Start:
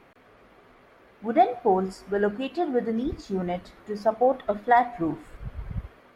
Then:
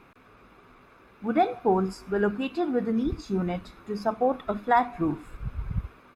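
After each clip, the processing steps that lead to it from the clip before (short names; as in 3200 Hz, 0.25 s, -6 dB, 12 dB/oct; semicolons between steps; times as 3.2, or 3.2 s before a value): comb 0.8 ms, depth 46%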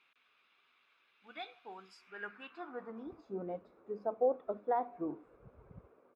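band-pass sweep 3200 Hz -> 500 Hz, 1.9–3.41; gain -4 dB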